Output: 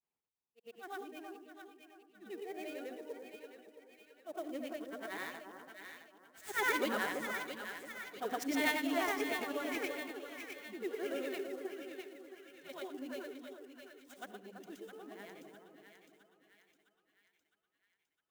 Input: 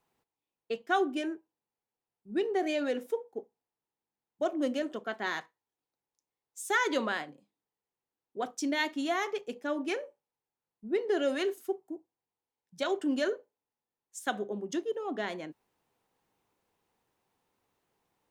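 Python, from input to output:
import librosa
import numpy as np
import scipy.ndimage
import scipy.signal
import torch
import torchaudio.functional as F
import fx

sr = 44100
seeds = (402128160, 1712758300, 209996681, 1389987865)

y = fx.frame_reverse(x, sr, frame_ms=238.0)
y = fx.doppler_pass(y, sr, speed_mps=6, closest_m=7.8, pass_at_s=7.97)
y = fx.peak_eq(y, sr, hz=2300.0, db=5.0, octaves=0.49)
y = fx.echo_split(y, sr, split_hz=1400.0, low_ms=335, high_ms=659, feedback_pct=52, wet_db=-6.5)
y = fx.clock_jitter(y, sr, seeds[0], jitter_ms=0.021)
y = y * librosa.db_to_amplitude(1.0)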